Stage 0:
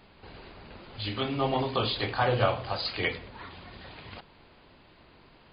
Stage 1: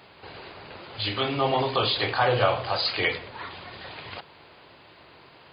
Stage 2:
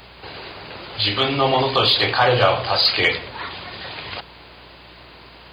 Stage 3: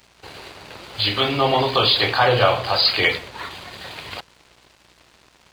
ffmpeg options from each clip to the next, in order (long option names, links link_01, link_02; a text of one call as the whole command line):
ffmpeg -i in.wav -filter_complex "[0:a]highpass=120,equalizer=frequency=220:width_type=o:width=0.95:gain=-9,asplit=2[link_01][link_02];[link_02]alimiter=level_in=1dB:limit=-24dB:level=0:latency=1:release=19,volume=-1dB,volume=-0.5dB[link_03];[link_01][link_03]amix=inputs=2:normalize=0,volume=1.5dB" out.wav
ffmpeg -i in.wav -af "highshelf=frequency=4100:gain=8.5,acontrast=49,aeval=exprs='val(0)+0.00316*(sin(2*PI*60*n/s)+sin(2*PI*2*60*n/s)/2+sin(2*PI*3*60*n/s)/3+sin(2*PI*4*60*n/s)/4+sin(2*PI*5*60*n/s)/5)':channel_layout=same" out.wav
ffmpeg -i in.wav -af "aeval=exprs='sgn(val(0))*max(abs(val(0))-0.00841,0)':channel_layout=same" out.wav